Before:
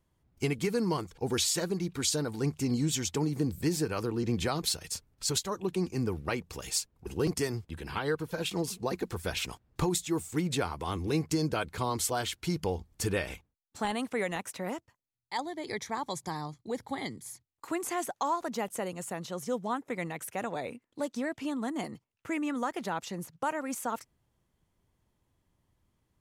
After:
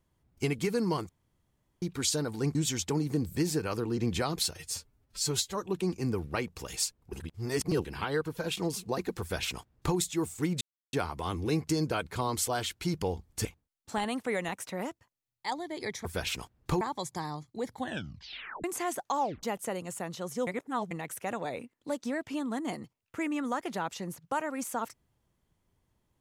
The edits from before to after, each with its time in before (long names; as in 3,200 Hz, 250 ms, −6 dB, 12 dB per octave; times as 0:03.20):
0:01.09–0:01.82: fill with room tone
0:02.55–0:02.81: remove
0:04.82–0:05.46: time-stretch 1.5×
0:07.14–0:07.79: reverse
0:09.15–0:09.91: duplicate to 0:15.92
0:10.55: splice in silence 0.32 s
0:13.07–0:13.32: remove
0:16.88: tape stop 0.87 s
0:18.29: tape stop 0.25 s
0:19.58–0:20.02: reverse